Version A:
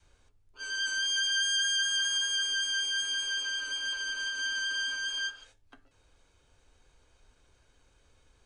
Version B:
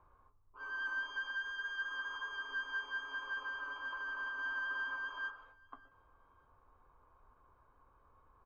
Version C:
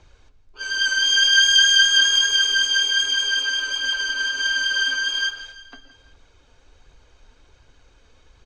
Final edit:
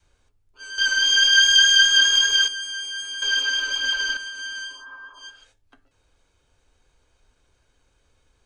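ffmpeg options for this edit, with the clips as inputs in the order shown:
-filter_complex "[2:a]asplit=2[a][b];[0:a]asplit=4[c][d][e][f];[c]atrim=end=0.782[g];[a]atrim=start=0.778:end=2.482[h];[d]atrim=start=2.478:end=3.222[i];[b]atrim=start=3.218:end=4.172[j];[e]atrim=start=4.168:end=4.87[k];[1:a]atrim=start=4.63:end=5.36[l];[f]atrim=start=5.12[m];[g][h]acrossfade=d=0.004:c1=hsin:c2=hsin[n];[n][i]acrossfade=d=0.004:c1=hsin:c2=hsin[o];[o][j]acrossfade=d=0.004:c1=hsin:c2=hsin[p];[p][k]acrossfade=d=0.004:c1=hsin:c2=hsin[q];[q][l]acrossfade=d=0.24:c1=tri:c2=tri[r];[r][m]acrossfade=d=0.24:c1=tri:c2=tri"

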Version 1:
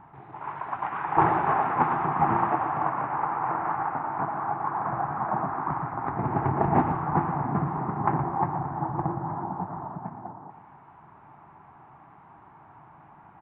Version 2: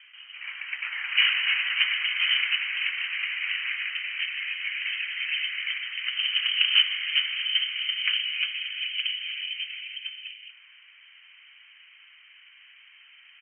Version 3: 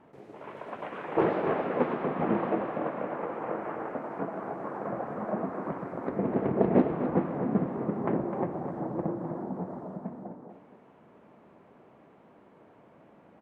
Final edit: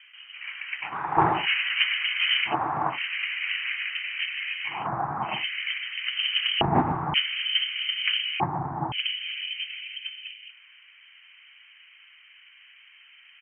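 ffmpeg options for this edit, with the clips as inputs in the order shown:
-filter_complex "[0:a]asplit=5[a][b][c][d][e];[1:a]asplit=6[f][g][h][i][j][k];[f]atrim=end=0.96[l];[a]atrim=start=0.8:end=1.48[m];[g]atrim=start=1.32:end=2.55[n];[b]atrim=start=2.45:end=2.99[o];[h]atrim=start=2.89:end=4.88[p];[c]atrim=start=4.64:end=5.45[q];[i]atrim=start=5.21:end=6.612[r];[d]atrim=start=6.608:end=7.142[s];[j]atrim=start=7.138:end=8.402[t];[e]atrim=start=8.398:end=8.922[u];[k]atrim=start=8.918[v];[l][m]acrossfade=d=0.16:c1=tri:c2=tri[w];[w][n]acrossfade=d=0.16:c1=tri:c2=tri[x];[x][o]acrossfade=d=0.1:c1=tri:c2=tri[y];[y][p]acrossfade=d=0.1:c1=tri:c2=tri[z];[z][q]acrossfade=d=0.24:c1=tri:c2=tri[aa];[aa][r]acrossfade=d=0.24:c1=tri:c2=tri[ab];[ab][s]acrossfade=d=0.004:c1=hsin:c2=hsin[ac];[ac][t]acrossfade=d=0.004:c1=hsin:c2=hsin[ad];[ad][u]acrossfade=d=0.004:c1=hsin:c2=hsin[ae];[ae][v]acrossfade=d=0.004:c1=hsin:c2=hsin"

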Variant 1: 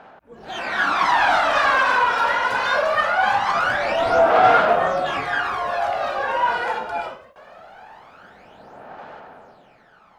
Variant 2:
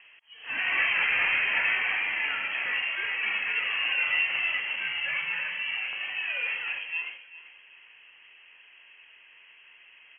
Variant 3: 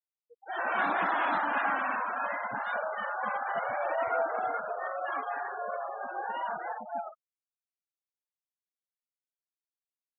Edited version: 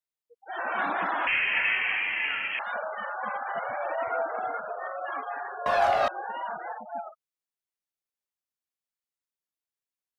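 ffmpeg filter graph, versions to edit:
-filter_complex "[2:a]asplit=3[a][b][c];[a]atrim=end=1.272[d];[1:a]atrim=start=1.268:end=2.592[e];[b]atrim=start=2.588:end=5.662[f];[0:a]atrim=start=5.658:end=6.082[g];[c]atrim=start=6.078[h];[d][e]acrossfade=d=0.004:c1=hsin:c2=hsin[i];[i][f]acrossfade=d=0.004:c1=hsin:c2=hsin[j];[j][g]acrossfade=d=0.004:c1=hsin:c2=hsin[k];[k][h]acrossfade=d=0.004:c1=hsin:c2=hsin"

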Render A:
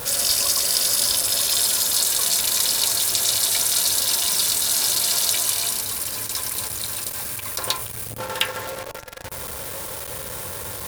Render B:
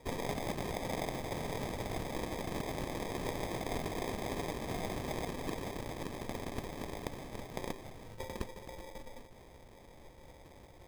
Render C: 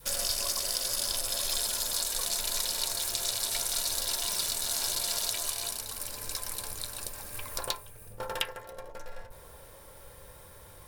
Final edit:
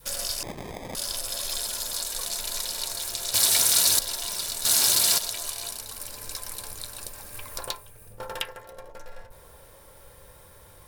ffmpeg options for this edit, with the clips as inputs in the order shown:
-filter_complex "[0:a]asplit=2[a][b];[2:a]asplit=4[c][d][e][f];[c]atrim=end=0.432[g];[1:a]atrim=start=0.428:end=0.952[h];[d]atrim=start=0.948:end=3.342[i];[a]atrim=start=3.338:end=3.992[j];[e]atrim=start=3.988:end=4.652[k];[b]atrim=start=4.648:end=5.182[l];[f]atrim=start=5.178[m];[g][h]acrossfade=d=0.004:c1=hsin:c2=hsin[n];[n][i]acrossfade=d=0.004:c1=hsin:c2=hsin[o];[o][j]acrossfade=d=0.004:c1=hsin:c2=hsin[p];[p][k]acrossfade=d=0.004:c1=hsin:c2=hsin[q];[q][l]acrossfade=d=0.004:c1=hsin:c2=hsin[r];[r][m]acrossfade=d=0.004:c1=hsin:c2=hsin"

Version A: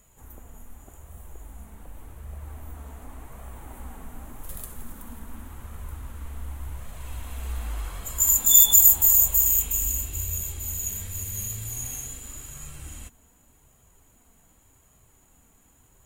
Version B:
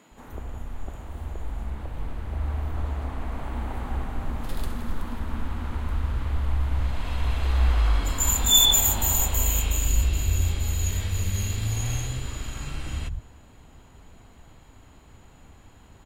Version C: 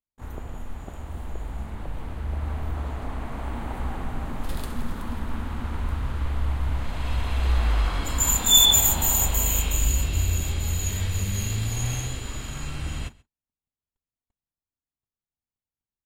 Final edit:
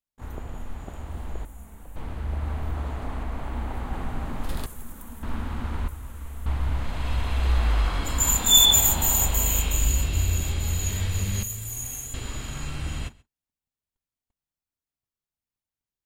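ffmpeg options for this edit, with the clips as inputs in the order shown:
-filter_complex "[0:a]asplit=4[a][b][c][d];[2:a]asplit=6[e][f][g][h][i][j];[e]atrim=end=1.452[k];[a]atrim=start=1.448:end=1.962[l];[f]atrim=start=1.958:end=3.232[m];[1:a]atrim=start=3.228:end=3.932[n];[g]atrim=start=3.928:end=4.662[o];[b]atrim=start=4.658:end=5.232[p];[h]atrim=start=5.228:end=5.882[q];[c]atrim=start=5.878:end=6.462[r];[i]atrim=start=6.458:end=11.432[s];[d]atrim=start=11.428:end=12.142[t];[j]atrim=start=12.138[u];[k][l]acrossfade=d=0.004:c1=hsin:c2=hsin[v];[v][m]acrossfade=d=0.004:c1=hsin:c2=hsin[w];[w][n]acrossfade=d=0.004:c1=hsin:c2=hsin[x];[x][o]acrossfade=d=0.004:c1=hsin:c2=hsin[y];[y][p]acrossfade=d=0.004:c1=hsin:c2=hsin[z];[z][q]acrossfade=d=0.004:c1=hsin:c2=hsin[aa];[aa][r]acrossfade=d=0.004:c1=hsin:c2=hsin[ab];[ab][s]acrossfade=d=0.004:c1=hsin:c2=hsin[ac];[ac][t]acrossfade=d=0.004:c1=hsin:c2=hsin[ad];[ad][u]acrossfade=d=0.004:c1=hsin:c2=hsin"

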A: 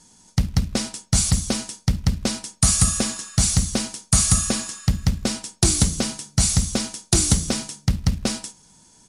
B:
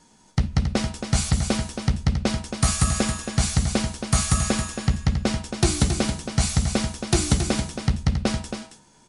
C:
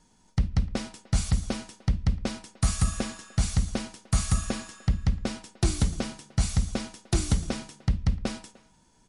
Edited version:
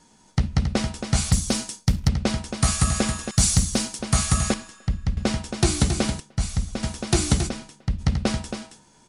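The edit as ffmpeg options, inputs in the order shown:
-filter_complex "[0:a]asplit=2[a][b];[2:a]asplit=3[c][d][e];[1:a]asplit=6[f][g][h][i][j][k];[f]atrim=end=1.322[l];[a]atrim=start=1.318:end=2.082[m];[g]atrim=start=2.078:end=3.312[n];[b]atrim=start=3.308:end=3.992[o];[h]atrim=start=3.988:end=4.542[p];[c]atrim=start=4.538:end=5.172[q];[i]atrim=start=5.168:end=6.202[r];[d]atrim=start=6.198:end=6.832[s];[j]atrim=start=6.828:end=7.5[t];[e]atrim=start=7.46:end=8.02[u];[k]atrim=start=7.98[v];[l][m]acrossfade=d=0.004:c1=hsin:c2=hsin[w];[w][n]acrossfade=d=0.004:c1=hsin:c2=hsin[x];[x][o]acrossfade=d=0.004:c1=hsin:c2=hsin[y];[y][p]acrossfade=d=0.004:c1=hsin:c2=hsin[z];[z][q]acrossfade=d=0.004:c1=hsin:c2=hsin[aa];[aa][r]acrossfade=d=0.004:c1=hsin:c2=hsin[ab];[ab][s]acrossfade=d=0.004:c1=hsin:c2=hsin[ac];[ac][t]acrossfade=d=0.004:c1=hsin:c2=hsin[ad];[ad][u]acrossfade=d=0.04:c1=tri:c2=tri[ae];[ae][v]acrossfade=d=0.04:c1=tri:c2=tri"

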